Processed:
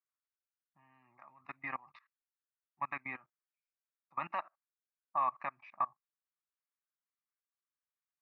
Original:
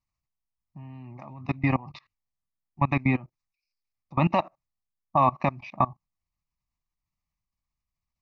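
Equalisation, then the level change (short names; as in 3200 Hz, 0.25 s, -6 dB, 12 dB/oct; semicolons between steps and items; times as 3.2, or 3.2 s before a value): band-pass 1500 Hz, Q 5.8; +2.5 dB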